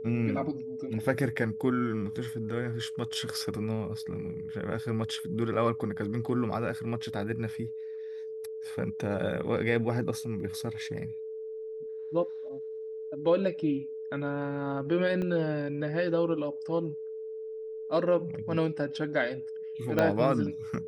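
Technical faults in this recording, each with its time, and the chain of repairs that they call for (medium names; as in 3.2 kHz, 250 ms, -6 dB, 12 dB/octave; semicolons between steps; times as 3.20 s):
whine 440 Hz -36 dBFS
15.22 s: dropout 2.7 ms
19.99 s: pop -13 dBFS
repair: de-click; band-stop 440 Hz, Q 30; interpolate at 15.22 s, 2.7 ms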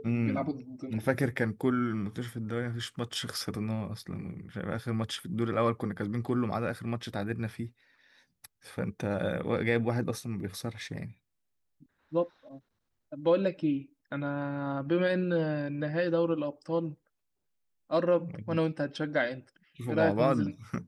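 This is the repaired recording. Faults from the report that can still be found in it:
19.99 s: pop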